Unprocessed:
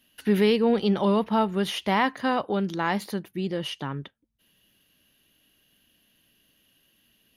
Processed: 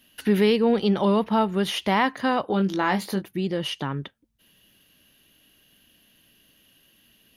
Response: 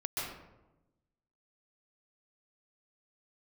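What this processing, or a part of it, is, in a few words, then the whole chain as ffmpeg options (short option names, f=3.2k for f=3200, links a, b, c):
parallel compression: -filter_complex "[0:a]asplit=2[a][b];[b]acompressor=threshold=-34dB:ratio=6,volume=-1dB[c];[a][c]amix=inputs=2:normalize=0,asettb=1/sr,asplit=3[d][e][f];[d]atrim=end=2.464[g];[e]atrim=start=2.46:end=3.22,asetpts=PTS-STARTPTS,afade=t=in:d=0.004:c=qsin,afade=t=out:st=0.756:d=0.004:c=qsin,asplit=2[h][i];[i]adelay=21,volume=-7dB[j];[h][j]amix=inputs=2:normalize=0,atrim=end_sample=33516[k];[f]atrim=start=3.216[l];[g][k]acrossfade=d=0.004:c1=hsin:c2=qsin[m];[m][l]acrossfade=d=0.004:c1=qsin:c2=hsin"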